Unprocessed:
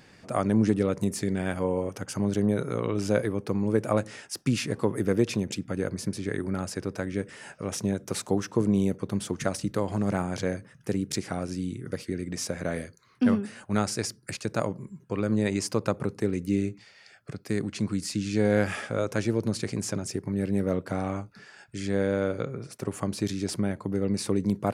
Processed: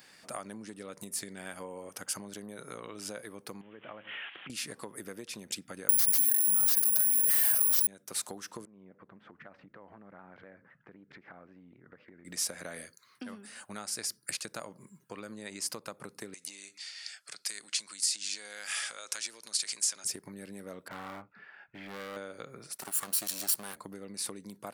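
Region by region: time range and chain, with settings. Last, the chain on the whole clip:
3.61–4.50 s: zero-crossing glitches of -21 dBFS + steep low-pass 3.2 kHz 96 dB/octave + compression 8:1, threshold -35 dBFS
5.89–7.87 s: careless resampling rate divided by 4×, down none, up zero stuff + comb 6.1 ms, depth 92% + level flattener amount 100%
8.65–12.25 s: low-pass 2 kHz 24 dB/octave + compression 4:1, threshold -42 dBFS + vibrato with a chosen wave saw down 3.9 Hz, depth 100 cents
16.34–20.05 s: compression 4:1, threshold -35 dBFS + frequency weighting ITU-R 468
20.88–22.17 s: low-pass 2.5 kHz 24 dB/octave + overload inside the chain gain 30 dB
22.81–23.76 s: comb filter that takes the minimum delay 0.7 ms + high-pass 380 Hz 6 dB/octave + treble shelf 5.6 kHz +11 dB
whole clip: fifteen-band graphic EQ 100 Hz -6 dB, 400 Hz -3 dB, 2.5 kHz -3 dB, 6.3 kHz -5 dB; compression, threshold -32 dBFS; tilt EQ +3.5 dB/octave; trim -3 dB

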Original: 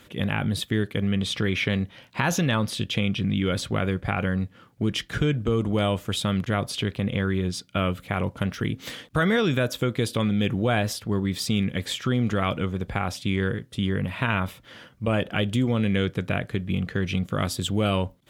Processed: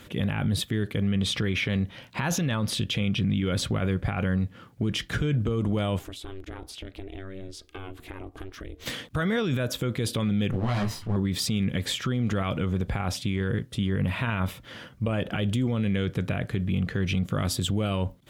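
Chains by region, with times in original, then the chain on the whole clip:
5.99–8.86 s: ring modulator 190 Hz + compression 4:1, threshold -42 dBFS
10.51–11.16 s: comb filter that takes the minimum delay 0.99 ms + treble shelf 6.8 kHz -8 dB + detune thickener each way 27 cents
whole clip: bass shelf 220 Hz +4.5 dB; peak limiter -21 dBFS; trim +2.5 dB

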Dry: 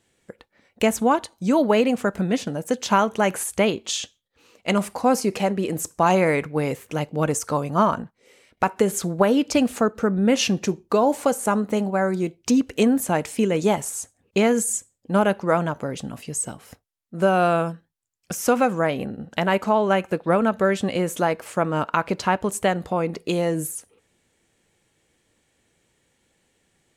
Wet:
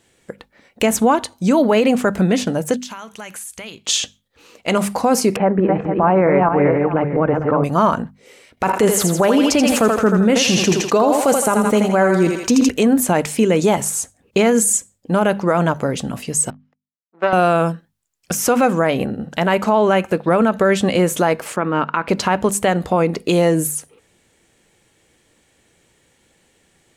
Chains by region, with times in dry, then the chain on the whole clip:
2.76–3.87 s: amplifier tone stack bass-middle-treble 5-5-5 + compression 10:1, threshold -36 dBFS
5.36–7.64 s: backward echo that repeats 226 ms, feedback 40%, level -3.5 dB + low-pass 1.8 kHz 24 dB/octave
8.65–12.69 s: thinning echo 82 ms, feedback 50%, high-pass 500 Hz, level -4.5 dB + decay stretcher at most 87 dB/s
16.50–17.33 s: power-law waveshaper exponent 2 + band-pass 350–3200 Hz + distance through air 59 m
21.56–22.08 s: band-pass 190–2800 Hz + peaking EQ 630 Hz -7 dB 0.76 oct
whole clip: hum notches 50/100/150/200/250 Hz; peak limiter -14.5 dBFS; trim +8.5 dB

